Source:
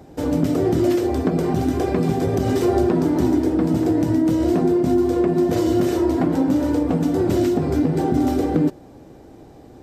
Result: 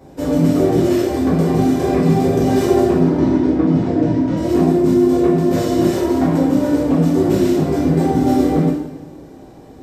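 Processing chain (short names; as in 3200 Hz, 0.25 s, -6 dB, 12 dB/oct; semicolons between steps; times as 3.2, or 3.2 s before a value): 2.91–4.37 air absorption 150 m; two-slope reverb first 0.78 s, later 2.1 s, DRR -7.5 dB; gain -4 dB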